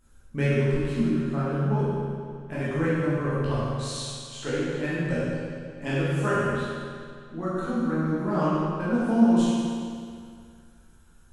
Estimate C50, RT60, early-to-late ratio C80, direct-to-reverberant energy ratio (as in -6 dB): -4.0 dB, 2.2 s, -2.0 dB, -11.0 dB